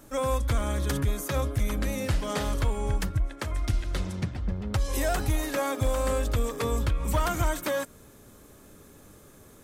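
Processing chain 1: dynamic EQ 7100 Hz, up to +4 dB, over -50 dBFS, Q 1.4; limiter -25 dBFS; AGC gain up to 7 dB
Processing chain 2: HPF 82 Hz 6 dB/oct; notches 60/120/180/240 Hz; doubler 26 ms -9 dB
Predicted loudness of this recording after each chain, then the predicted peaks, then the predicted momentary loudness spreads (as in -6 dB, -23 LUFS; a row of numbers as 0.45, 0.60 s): -27.5, -30.5 LUFS; -18.0, -15.5 dBFS; 19, 6 LU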